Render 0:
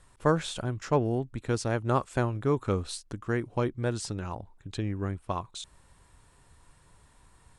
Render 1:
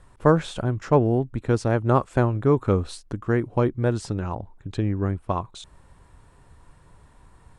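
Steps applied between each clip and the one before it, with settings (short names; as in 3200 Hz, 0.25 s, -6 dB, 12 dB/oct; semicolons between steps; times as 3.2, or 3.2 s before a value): high shelf 2200 Hz -11 dB; gain +7.5 dB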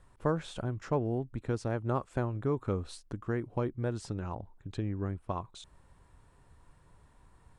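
compressor 1.5:1, threshold -24 dBFS, peak gain reduction 5 dB; gain -8 dB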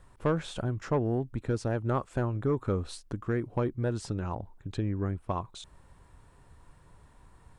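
soft clip -21 dBFS, distortion -18 dB; gain +4 dB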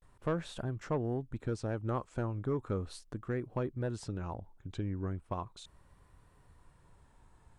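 vibrato 0.37 Hz 74 cents; gain -5.5 dB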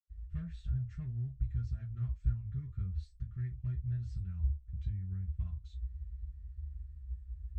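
reverb, pre-delay 77 ms; gain +14.5 dB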